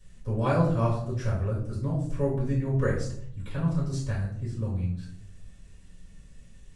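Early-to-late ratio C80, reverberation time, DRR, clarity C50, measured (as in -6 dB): 9.0 dB, 0.65 s, -8.5 dB, 5.0 dB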